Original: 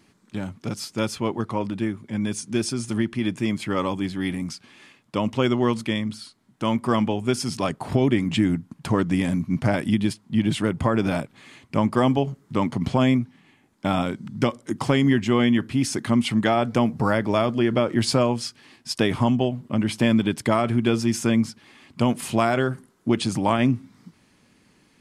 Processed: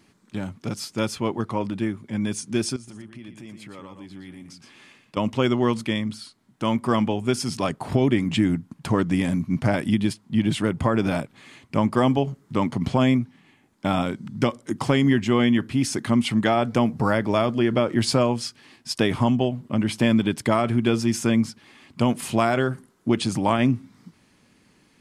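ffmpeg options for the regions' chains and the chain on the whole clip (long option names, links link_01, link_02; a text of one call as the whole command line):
ffmpeg -i in.wav -filter_complex "[0:a]asettb=1/sr,asplit=3[link_01][link_02][link_03];[link_01]atrim=end=2.764[link_04];[link_02]atrim=start=2.76:end=5.17,asetpts=PTS-STARTPTS,afade=type=in:duration=0.004:curve=qsin,afade=type=out:start_time=2.406:duration=0.004:curve=qsin,acompressor=threshold=-46dB:ratio=2.5:attack=3.2:release=140:knee=1:detection=peak,aecho=1:1:117:0.422,atrim=end_sample=106281[link_05];[link_03]atrim=start=5.166[link_06];[link_04][link_05]acrossfade=duration=0.004:curve1=hsin:curve2=qsin[link_07];[link_07][link_06]acrossfade=duration=0.004:curve1=qsin:curve2=hsin" out.wav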